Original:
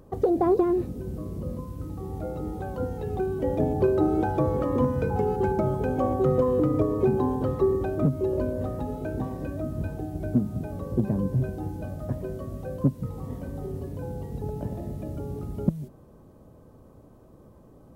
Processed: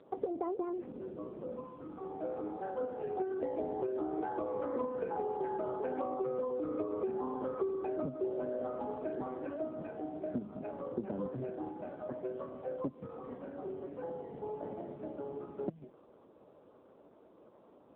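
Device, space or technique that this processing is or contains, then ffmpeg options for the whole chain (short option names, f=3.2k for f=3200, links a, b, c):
voicemail: -af "highpass=370,lowpass=2.7k,acompressor=threshold=-31dB:ratio=10" -ar 8000 -c:a libopencore_amrnb -b:a 5900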